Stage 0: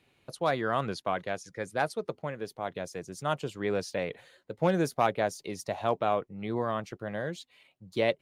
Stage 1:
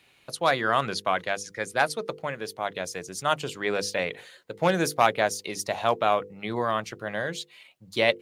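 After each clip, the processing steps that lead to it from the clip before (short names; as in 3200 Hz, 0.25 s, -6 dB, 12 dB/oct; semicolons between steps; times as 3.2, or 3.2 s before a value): tilt shelf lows -5 dB, about 870 Hz; notches 50/100/150/200/250/300/350/400/450/500 Hz; gain +5.5 dB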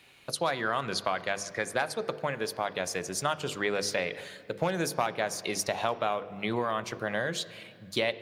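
compressor 5:1, threshold -29 dBFS, peak gain reduction 14 dB; on a send at -14.5 dB: reverb RT60 2.3 s, pre-delay 4 ms; on the sum: gain +3 dB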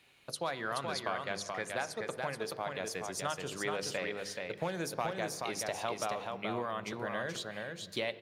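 echo 0.428 s -4 dB; gain -7 dB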